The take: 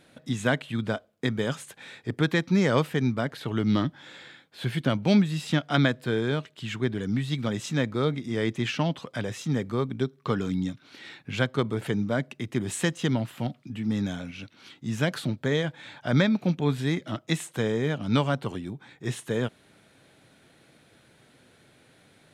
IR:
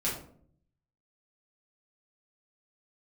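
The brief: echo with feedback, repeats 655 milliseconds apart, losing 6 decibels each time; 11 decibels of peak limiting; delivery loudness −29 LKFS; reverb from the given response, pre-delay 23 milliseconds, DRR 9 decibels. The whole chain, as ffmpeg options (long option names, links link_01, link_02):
-filter_complex "[0:a]alimiter=limit=-18.5dB:level=0:latency=1,aecho=1:1:655|1310|1965|2620|3275|3930:0.501|0.251|0.125|0.0626|0.0313|0.0157,asplit=2[link_01][link_02];[1:a]atrim=start_sample=2205,adelay=23[link_03];[link_02][link_03]afir=irnorm=-1:irlink=0,volume=-15.5dB[link_04];[link_01][link_04]amix=inputs=2:normalize=0"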